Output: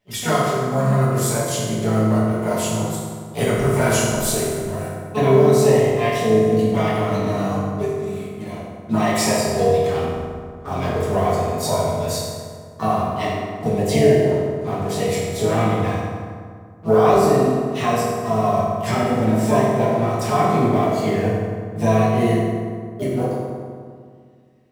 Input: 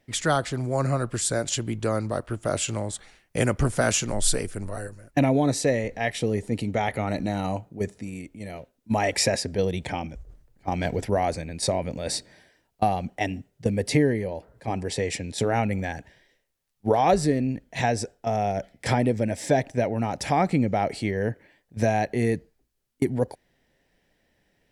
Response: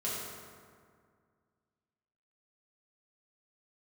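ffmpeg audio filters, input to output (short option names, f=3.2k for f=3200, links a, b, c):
-filter_complex "[0:a]asplit=2[a][b];[b]asetrate=66075,aresample=44100,atempo=0.66742,volume=-6dB[c];[a][c]amix=inputs=2:normalize=0,asplit=2[d][e];[e]acrusher=bits=5:mix=0:aa=0.5,volume=-3dB[f];[d][f]amix=inputs=2:normalize=0[g];[1:a]atrim=start_sample=2205[h];[g][h]afir=irnorm=-1:irlink=0,volume=-6dB"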